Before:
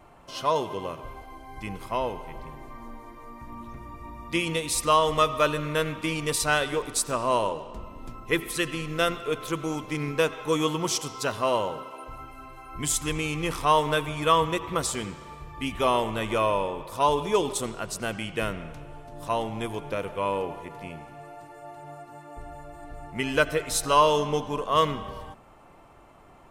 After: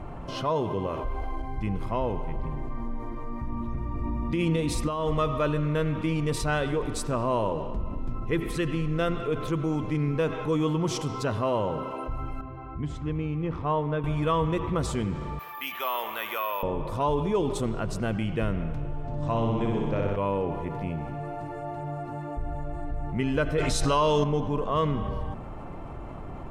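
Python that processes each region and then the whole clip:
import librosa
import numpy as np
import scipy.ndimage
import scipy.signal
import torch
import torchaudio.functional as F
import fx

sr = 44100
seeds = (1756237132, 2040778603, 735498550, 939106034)

y = fx.chain(x, sr, fx.peak_eq(hz=140.0, db=-12.5, octaves=1.3),
    fx.env_flatten(amount_pct=50), at=(0.87, 1.42))
y = fx.chain(y, sr, fx.peak_eq(hz=250.0, db=5.5, octaves=0.77),
    fx.over_compress(threshold_db=-26.0, ratio=-1.0), at=(3.95, 5.08))
y = fx.chain(y, sr, fx.highpass(hz=45.0, slope=24),
    fx.spacing_loss(db_at_10k=27),
    fx.upward_expand(threshold_db=-34.0, expansion=1.5), at=(12.41, 14.04))
y = fx.chain(y, sr, fx.highpass(hz=1200.0, slope=12),
    fx.resample_bad(factor=3, down='filtered', up='zero_stuff'), at=(15.39, 16.63))
y = fx.chain(y, sr, fx.steep_lowpass(hz=8200.0, slope=48),
    fx.room_flutter(wall_m=10.5, rt60_s=1.3), at=(19.03, 20.16))
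y = fx.chain(y, sr, fx.lowpass(hz=12000.0, slope=12),
    fx.peak_eq(hz=5800.0, db=8.5, octaves=2.3),
    fx.env_flatten(amount_pct=50), at=(23.58, 24.24))
y = fx.lowpass(y, sr, hz=2100.0, slope=6)
y = fx.low_shelf(y, sr, hz=310.0, db=12.0)
y = fx.env_flatten(y, sr, amount_pct=50)
y = y * 10.0 ** (-8.0 / 20.0)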